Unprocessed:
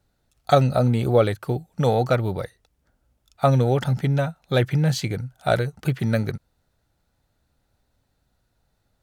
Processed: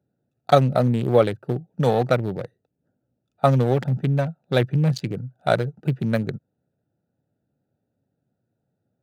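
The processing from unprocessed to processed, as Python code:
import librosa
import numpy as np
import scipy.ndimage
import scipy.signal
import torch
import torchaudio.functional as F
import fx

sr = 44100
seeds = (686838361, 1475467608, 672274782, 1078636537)

y = fx.wiener(x, sr, points=41)
y = scipy.signal.sosfilt(scipy.signal.butter(4, 120.0, 'highpass', fs=sr, output='sos'), y)
y = y * 10.0 ** (1.5 / 20.0)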